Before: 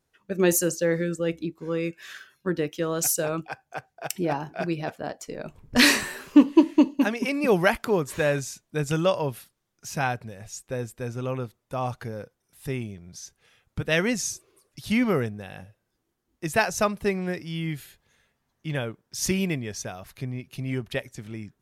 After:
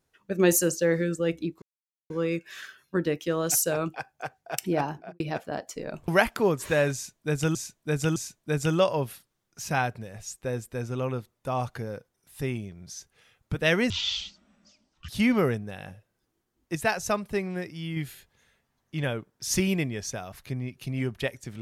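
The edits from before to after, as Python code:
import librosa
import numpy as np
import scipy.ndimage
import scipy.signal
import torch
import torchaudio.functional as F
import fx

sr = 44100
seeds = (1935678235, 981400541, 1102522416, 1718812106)

y = fx.studio_fade_out(x, sr, start_s=4.4, length_s=0.32)
y = fx.edit(y, sr, fx.insert_silence(at_s=1.62, length_s=0.48),
    fx.cut(start_s=5.6, length_s=1.96),
    fx.repeat(start_s=8.42, length_s=0.61, count=3),
    fx.speed_span(start_s=14.16, length_s=0.64, speed=0.54),
    fx.clip_gain(start_s=16.47, length_s=1.21, db=-3.5), tone=tone)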